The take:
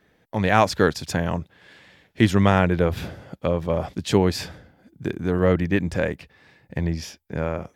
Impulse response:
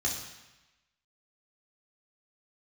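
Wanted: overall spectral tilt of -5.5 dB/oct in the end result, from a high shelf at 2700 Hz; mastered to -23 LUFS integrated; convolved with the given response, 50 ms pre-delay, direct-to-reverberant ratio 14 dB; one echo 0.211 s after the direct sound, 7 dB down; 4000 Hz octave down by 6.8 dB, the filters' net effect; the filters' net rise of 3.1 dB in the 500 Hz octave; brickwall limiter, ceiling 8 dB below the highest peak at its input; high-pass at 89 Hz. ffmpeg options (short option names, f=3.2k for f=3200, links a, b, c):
-filter_complex "[0:a]highpass=89,equalizer=f=500:t=o:g=4,highshelf=f=2.7k:g=-4,equalizer=f=4k:t=o:g=-5.5,alimiter=limit=-10dB:level=0:latency=1,aecho=1:1:211:0.447,asplit=2[a][b];[1:a]atrim=start_sample=2205,adelay=50[c];[b][c]afir=irnorm=-1:irlink=0,volume=-20dB[d];[a][d]amix=inputs=2:normalize=0,volume=1dB"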